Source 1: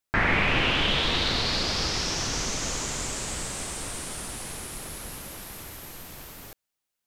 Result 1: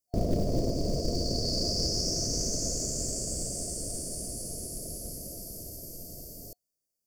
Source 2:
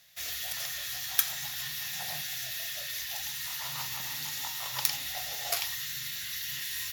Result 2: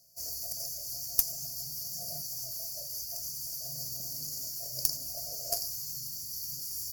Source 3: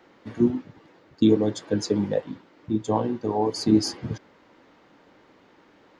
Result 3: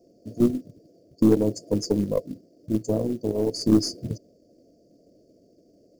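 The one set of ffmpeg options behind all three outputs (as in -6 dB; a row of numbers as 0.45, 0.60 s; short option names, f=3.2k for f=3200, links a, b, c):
-af "afftfilt=real='re*(1-between(b*sr/4096,720,4400))':imag='im*(1-between(b*sr/4096,720,4400))':win_size=4096:overlap=0.75,acrusher=bits=7:mode=log:mix=0:aa=0.000001,aeval=exprs='0.668*(cos(1*acos(clip(val(0)/0.668,-1,1)))-cos(1*PI/2))+0.0237*(cos(8*acos(clip(val(0)/0.668,-1,1)))-cos(8*PI/2))':c=same"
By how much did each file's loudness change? -5.0, -1.5, 0.0 LU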